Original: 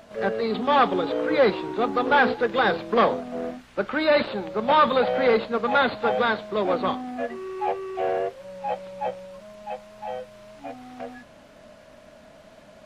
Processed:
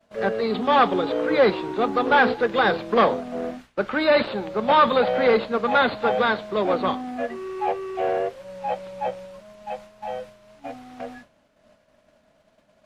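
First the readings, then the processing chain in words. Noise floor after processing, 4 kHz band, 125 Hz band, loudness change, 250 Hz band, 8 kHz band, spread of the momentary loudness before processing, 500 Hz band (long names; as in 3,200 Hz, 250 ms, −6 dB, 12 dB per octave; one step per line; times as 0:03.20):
−63 dBFS, +1.5 dB, +1.5 dB, +1.5 dB, +1.5 dB, can't be measured, 18 LU, +1.5 dB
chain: downward expander −39 dBFS
level +1.5 dB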